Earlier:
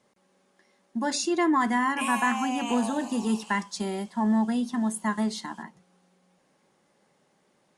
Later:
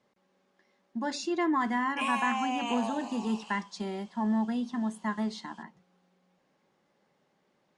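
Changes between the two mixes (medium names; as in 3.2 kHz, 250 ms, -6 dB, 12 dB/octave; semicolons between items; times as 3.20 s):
speech -4.5 dB; master: add low-pass 5.1 kHz 12 dB/octave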